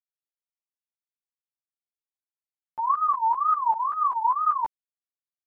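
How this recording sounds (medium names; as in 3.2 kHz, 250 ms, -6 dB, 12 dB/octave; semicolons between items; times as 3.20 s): a quantiser's noise floor 12-bit, dither none; tremolo saw up 5.1 Hz, depth 85%; a shimmering, thickened sound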